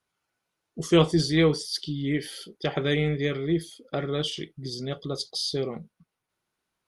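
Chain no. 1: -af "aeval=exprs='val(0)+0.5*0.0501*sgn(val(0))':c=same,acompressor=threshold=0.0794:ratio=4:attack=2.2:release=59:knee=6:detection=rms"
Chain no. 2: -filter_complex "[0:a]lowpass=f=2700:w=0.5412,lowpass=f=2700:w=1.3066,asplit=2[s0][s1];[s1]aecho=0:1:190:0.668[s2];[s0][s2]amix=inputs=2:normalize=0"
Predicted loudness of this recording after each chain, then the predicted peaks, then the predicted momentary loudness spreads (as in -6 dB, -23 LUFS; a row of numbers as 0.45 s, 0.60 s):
-27.5 LUFS, -26.5 LUFS; -16.0 dBFS, -7.5 dBFS; 6 LU, 14 LU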